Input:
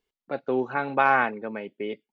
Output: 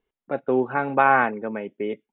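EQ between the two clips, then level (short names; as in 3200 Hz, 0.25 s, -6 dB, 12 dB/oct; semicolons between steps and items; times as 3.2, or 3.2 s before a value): brick-wall FIR low-pass 3900 Hz; air absorption 410 m; +5.0 dB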